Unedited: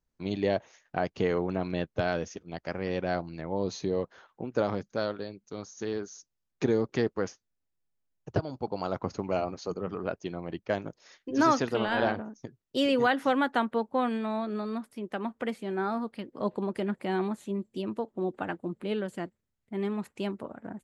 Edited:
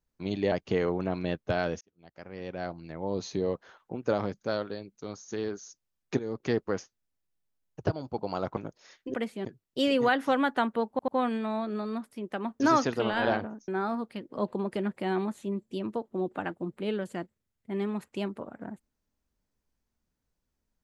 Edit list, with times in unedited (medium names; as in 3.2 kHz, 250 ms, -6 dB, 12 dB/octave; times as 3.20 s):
0.52–1.01 s: delete
2.30–3.85 s: fade in
6.68–7.02 s: fade in, from -16 dB
9.06–10.78 s: delete
11.35–12.43 s: swap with 15.40–15.71 s
13.88 s: stutter 0.09 s, 3 plays